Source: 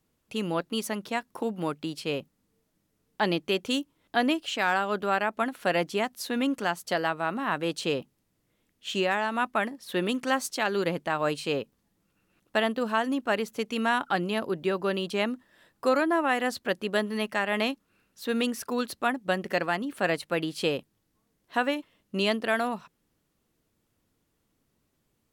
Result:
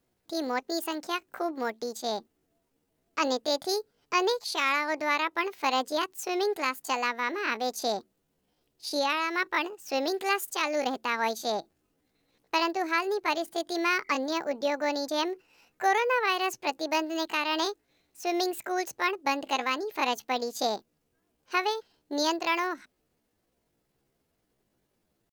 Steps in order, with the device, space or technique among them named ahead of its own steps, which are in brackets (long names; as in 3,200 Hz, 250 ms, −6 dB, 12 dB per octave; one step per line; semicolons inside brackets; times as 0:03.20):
chipmunk voice (pitch shifter +7 semitones)
level −1 dB